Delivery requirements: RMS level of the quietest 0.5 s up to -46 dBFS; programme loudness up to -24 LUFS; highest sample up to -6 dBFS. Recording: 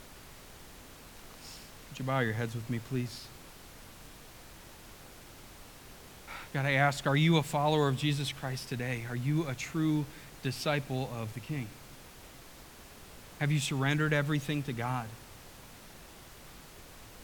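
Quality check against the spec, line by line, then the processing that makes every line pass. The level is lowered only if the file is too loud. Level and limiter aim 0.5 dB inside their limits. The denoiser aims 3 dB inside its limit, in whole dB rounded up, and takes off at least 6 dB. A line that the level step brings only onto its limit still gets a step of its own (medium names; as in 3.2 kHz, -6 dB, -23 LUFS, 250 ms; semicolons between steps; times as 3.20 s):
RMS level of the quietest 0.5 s -51 dBFS: pass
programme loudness -32.0 LUFS: pass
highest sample -13.5 dBFS: pass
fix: none needed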